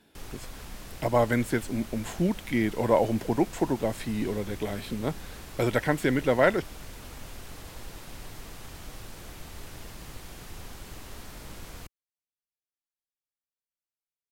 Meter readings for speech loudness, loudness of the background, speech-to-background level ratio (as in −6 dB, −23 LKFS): −27.5 LKFS, −44.0 LKFS, 16.5 dB